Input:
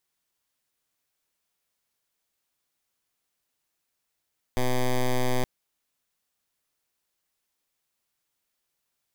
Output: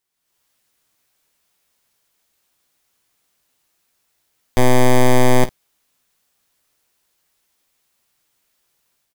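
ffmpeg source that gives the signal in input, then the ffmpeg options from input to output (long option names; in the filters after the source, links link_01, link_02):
-f lavfi -i "aevalsrc='0.0708*(2*lt(mod(126*t,1),0.09)-1)':duration=0.87:sample_rate=44100"
-filter_complex "[0:a]dynaudnorm=framelen=110:gausssize=5:maxgain=11dB,asplit=2[link_01][link_02];[link_02]aecho=0:1:16|51:0.316|0.15[link_03];[link_01][link_03]amix=inputs=2:normalize=0"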